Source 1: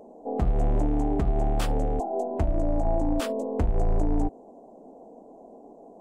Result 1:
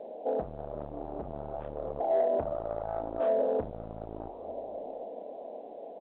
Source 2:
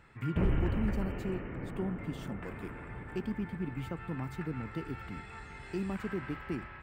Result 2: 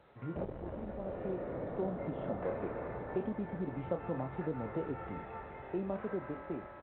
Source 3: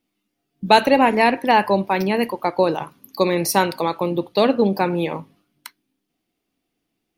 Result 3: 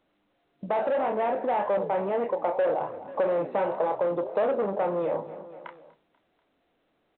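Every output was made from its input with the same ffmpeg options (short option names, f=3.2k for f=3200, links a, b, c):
-filter_complex "[0:a]equalizer=f=570:w=2.2:g=10.5,flanger=delay=8.9:depth=8:regen=-82:speed=1.8:shape=triangular,aemphasis=mode=reproduction:type=bsi,acrossover=split=530[a][b];[a]volume=15dB,asoftclip=hard,volume=-15dB[c];[b]asplit=2[d][e];[e]adelay=29,volume=-4dB[f];[d][f]amix=inputs=2:normalize=0[g];[c][g]amix=inputs=2:normalize=0,asoftclip=type=tanh:threshold=-18dB,dynaudnorm=f=290:g=11:m=7dB,asplit=2[h][i];[i]aecho=0:1:243|486|729:0.0668|0.0348|0.0181[j];[h][j]amix=inputs=2:normalize=0,acompressor=threshold=-27dB:ratio=4,bandpass=f=670:t=q:w=0.99:csg=0,volume=2.5dB" -ar 8000 -c:a pcm_alaw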